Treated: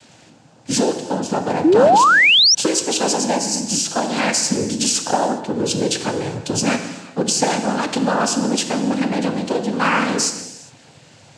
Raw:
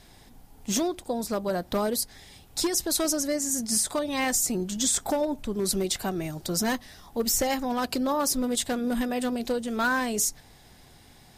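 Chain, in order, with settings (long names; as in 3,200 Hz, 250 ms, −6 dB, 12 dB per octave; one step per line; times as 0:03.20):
cochlear-implant simulation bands 8
reverb whose tail is shaped and stops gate 440 ms falling, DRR 6 dB
sound drawn into the spectrogram rise, 0:01.64–0:02.55, 290–6,000 Hz −19 dBFS
level +7.5 dB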